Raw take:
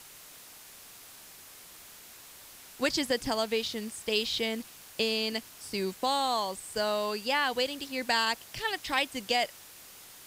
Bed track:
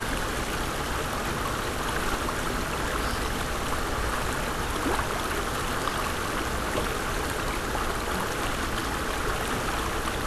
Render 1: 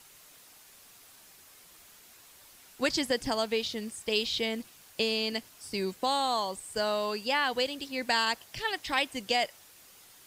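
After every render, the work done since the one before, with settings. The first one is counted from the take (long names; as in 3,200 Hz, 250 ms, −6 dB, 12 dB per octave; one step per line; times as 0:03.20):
broadband denoise 6 dB, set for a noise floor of −51 dBFS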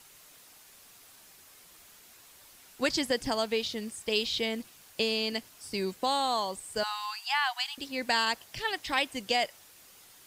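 0:06.83–0:07.78: linear-phase brick-wall high-pass 690 Hz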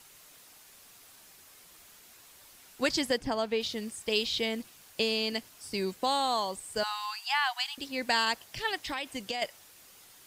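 0:03.16–0:03.60: high-shelf EQ 2,900 Hz → 4,900 Hz −11.5 dB
0:08.85–0:09.42: downward compressor, threshold −30 dBFS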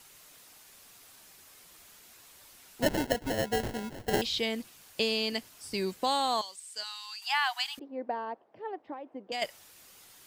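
0:02.82–0:04.22: sample-rate reduction 1,200 Hz
0:06.41–0:07.22: resonant band-pass 5,600 Hz, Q 0.86
0:07.79–0:09.32: flat-topped band-pass 470 Hz, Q 0.84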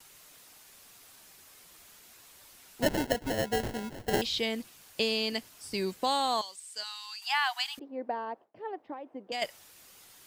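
noise gate with hold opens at −50 dBFS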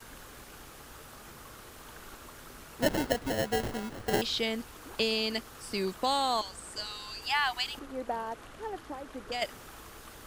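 mix in bed track −21 dB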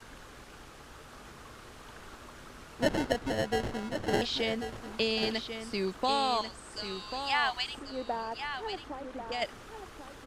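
high-frequency loss of the air 54 metres
single-tap delay 1,091 ms −8.5 dB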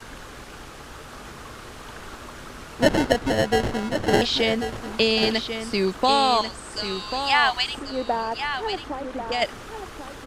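level +9.5 dB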